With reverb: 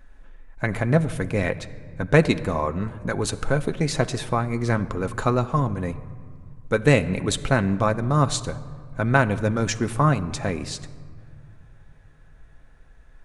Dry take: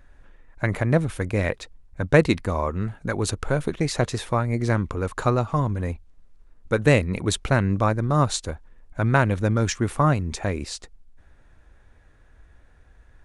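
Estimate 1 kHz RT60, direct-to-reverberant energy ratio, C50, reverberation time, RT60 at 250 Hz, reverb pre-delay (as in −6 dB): 2.1 s, 8.0 dB, 16.0 dB, 2.1 s, 3.1 s, 4 ms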